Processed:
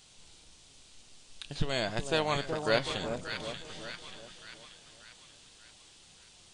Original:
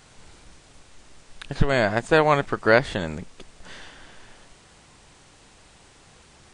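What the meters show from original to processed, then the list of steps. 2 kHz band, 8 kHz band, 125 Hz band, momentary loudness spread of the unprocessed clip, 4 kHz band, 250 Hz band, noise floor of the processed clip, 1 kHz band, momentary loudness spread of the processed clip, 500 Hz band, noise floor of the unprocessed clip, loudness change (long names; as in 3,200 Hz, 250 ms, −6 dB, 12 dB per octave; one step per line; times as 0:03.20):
−11.5 dB, −1.0 dB, −10.0 dB, 15 LU, 0.0 dB, −10.5 dB, −58 dBFS, −11.5 dB, 22 LU, −10.5 dB, −53 dBFS, −11.5 dB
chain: high shelf with overshoot 2,400 Hz +8.5 dB, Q 1.5
echo with a time of its own for lows and highs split 1,100 Hz, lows 373 ms, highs 584 ms, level −6.5 dB
flanger 0.48 Hz, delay 5.1 ms, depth 3.2 ms, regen +82%
level −7 dB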